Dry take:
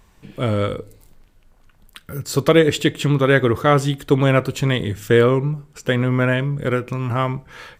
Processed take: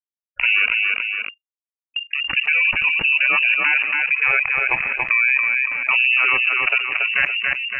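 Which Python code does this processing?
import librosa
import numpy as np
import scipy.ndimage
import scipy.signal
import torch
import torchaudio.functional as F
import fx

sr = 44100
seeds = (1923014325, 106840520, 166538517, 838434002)

y = fx.delta_hold(x, sr, step_db=-17.5)
y = fx.clip_asym(y, sr, top_db=-11.5, bottom_db=-6.0)
y = fx.highpass(y, sr, hz=210.0, slope=24, at=(3.74, 5.91))
y = fx.level_steps(y, sr, step_db=21)
y = fx.spec_gate(y, sr, threshold_db=-20, keep='strong')
y = fx.dynamic_eq(y, sr, hz=630.0, q=4.7, threshold_db=-36.0, ratio=4.0, max_db=-3)
y = fx.echo_feedback(y, sr, ms=282, feedback_pct=15, wet_db=-9.0)
y = fx.freq_invert(y, sr, carrier_hz=2800)
y = fx.env_flatten(y, sr, amount_pct=70)
y = y * 10.0 ** (3.5 / 20.0)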